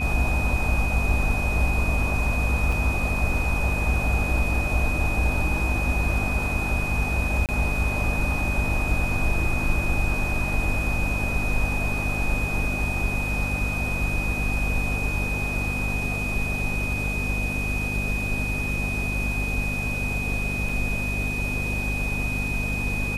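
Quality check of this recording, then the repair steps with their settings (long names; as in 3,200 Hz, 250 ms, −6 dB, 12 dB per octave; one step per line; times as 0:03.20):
mains hum 50 Hz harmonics 5 −29 dBFS
whistle 2,500 Hz −28 dBFS
0:02.72: drop-out 3.7 ms
0:07.46–0:07.49: drop-out 28 ms
0:20.69: drop-out 3.1 ms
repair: hum removal 50 Hz, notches 5
notch filter 2,500 Hz, Q 30
repair the gap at 0:02.72, 3.7 ms
repair the gap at 0:07.46, 28 ms
repair the gap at 0:20.69, 3.1 ms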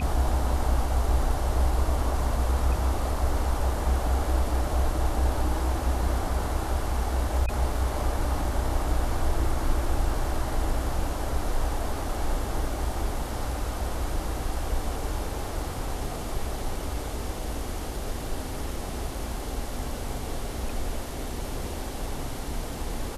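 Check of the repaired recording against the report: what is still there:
none of them is left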